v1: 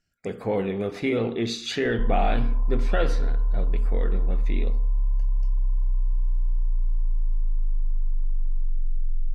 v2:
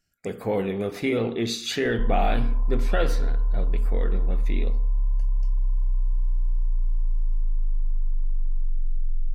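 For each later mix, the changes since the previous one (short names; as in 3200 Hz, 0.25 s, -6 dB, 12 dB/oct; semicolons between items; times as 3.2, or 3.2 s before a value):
speech: remove air absorption 54 m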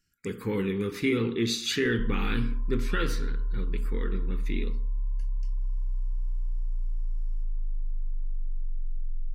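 background -6.5 dB; master: add Butterworth band-stop 660 Hz, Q 1.1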